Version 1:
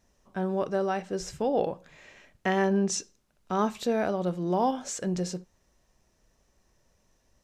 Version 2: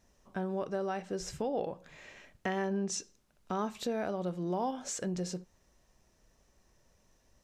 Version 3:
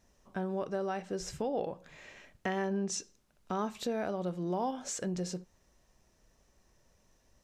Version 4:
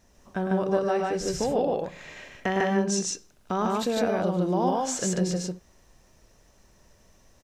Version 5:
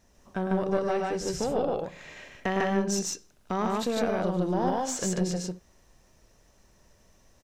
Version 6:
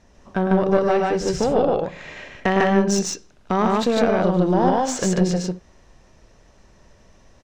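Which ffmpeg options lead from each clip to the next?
ffmpeg -i in.wav -af "acompressor=threshold=-36dB:ratio=2" out.wav
ffmpeg -i in.wav -af anull out.wav
ffmpeg -i in.wav -af "aecho=1:1:105|148.7:0.398|0.891,volume=6.5dB" out.wav
ffmpeg -i in.wav -af "aeval=exprs='(tanh(5.62*val(0)+0.5)-tanh(0.5))/5.62':channel_layout=same" out.wav
ffmpeg -i in.wav -af "adynamicsmooth=sensitivity=2.5:basefreq=5900,volume=9dB" out.wav

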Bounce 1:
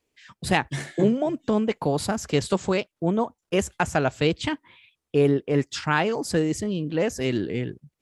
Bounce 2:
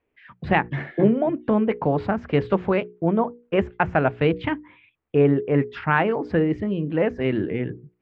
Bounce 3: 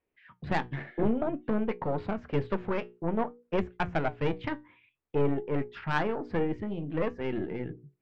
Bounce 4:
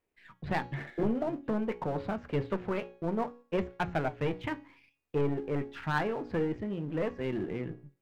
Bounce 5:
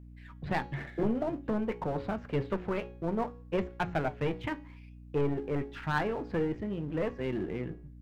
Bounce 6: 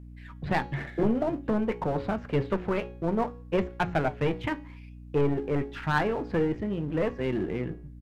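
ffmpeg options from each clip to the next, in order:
ffmpeg -i in.wav -af "lowpass=frequency=2400:width=0.5412,lowpass=frequency=2400:width=1.3066,bandreject=frequency=60:width_type=h:width=6,bandreject=frequency=120:width_type=h:width=6,bandreject=frequency=180:width_type=h:width=6,bandreject=frequency=240:width_type=h:width=6,bandreject=frequency=300:width_type=h:width=6,bandreject=frequency=360:width_type=h:width=6,bandreject=frequency=420:width_type=h:width=6,bandreject=frequency=480:width_type=h:width=6,volume=3dB" out.wav
ffmpeg -i in.wav -af "aeval=exprs='(tanh(5.01*val(0)+0.7)-tanh(0.7))/5.01':channel_layout=same,flanger=delay=5.4:depth=3.1:regen=76:speed=0.54:shape=sinusoidal" out.wav
ffmpeg -i in.wav -af "aeval=exprs='if(lt(val(0),0),0.447*val(0),val(0))':channel_layout=same,bandreject=frequency=276.9:width_type=h:width=4,bandreject=frequency=553.8:width_type=h:width=4,bandreject=frequency=830.7:width_type=h:width=4,bandreject=frequency=1107.6:width_type=h:width=4,bandreject=frequency=1384.5:width_type=h:width=4,bandreject=frequency=1661.4:width_type=h:width=4,bandreject=frequency=1938.3:width_type=h:width=4,bandreject=frequency=2215.2:width_type=h:width=4,bandreject=frequency=2492.1:width_type=h:width=4,bandreject=frequency=2769:width_type=h:width=4,bandreject=frequency=3045.9:width_type=h:width=4,bandreject=frequency=3322.8:width_type=h:width=4,bandreject=frequency=3599.7:width_type=h:width=4,bandreject=frequency=3876.6:width_type=h:width=4,bandreject=frequency=4153.5:width_type=h:width=4,bandreject=frequency=4430.4:width_type=h:width=4,bandreject=frequency=4707.3:width_type=h:width=4,bandreject=frequency=4984.2:width_type=h:width=4,bandreject=frequency=5261.1:width_type=h:width=4,bandreject=frequency=5538:width_type=h:width=4,bandreject=frequency=5814.9:width_type=h:width=4,bandreject=frequency=6091.8:width_type=h:width=4,bandreject=frequency=6368.7:width_type=h:width=4,bandreject=frequency=6645.6:width_type=h:width=4,bandreject=frequency=6922.5:width_type=h:width=4,bandreject=frequency=7199.4:width_type=h:width=4,bandreject=frequency=7476.3:width_type=h:width=4,volume=3dB" out.wav
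ffmpeg -i in.wav -af "aeval=exprs='val(0)+0.00398*(sin(2*PI*60*n/s)+sin(2*PI*2*60*n/s)/2+sin(2*PI*3*60*n/s)/3+sin(2*PI*4*60*n/s)/4+sin(2*PI*5*60*n/s)/5)':channel_layout=same" out.wav
ffmpeg -i in.wav -af "aresample=32000,aresample=44100,volume=4.5dB" out.wav

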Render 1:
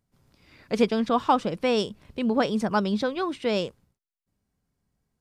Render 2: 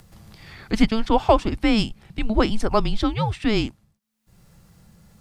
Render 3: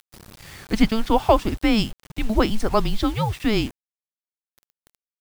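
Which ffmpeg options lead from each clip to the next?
ffmpeg -i in.wav -af "acompressor=mode=upward:threshold=-39dB:ratio=2.5,afreqshift=-220,volume=5dB" out.wav
ffmpeg -i in.wav -af "acrusher=bits=6:mix=0:aa=0.000001" out.wav

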